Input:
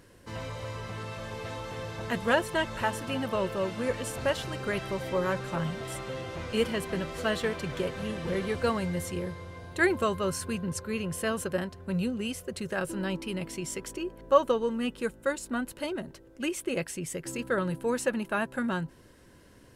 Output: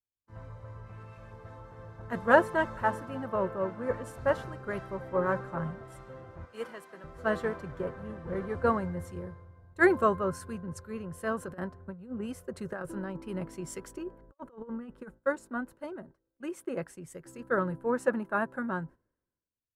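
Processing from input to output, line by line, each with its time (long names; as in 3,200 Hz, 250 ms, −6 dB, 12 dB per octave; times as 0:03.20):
0:00.86–0:01.32: parametric band 2,500 Hz +11 dB 0.26 octaves
0:06.45–0:07.04: high-pass filter 750 Hz 6 dB per octave
0:11.43–0:15.14: compressor whose output falls as the input rises −32 dBFS, ratio −0.5
whole clip: high shelf with overshoot 2,000 Hz −11 dB, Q 1.5; noise gate −44 dBFS, range −11 dB; multiband upward and downward expander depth 100%; level −3.5 dB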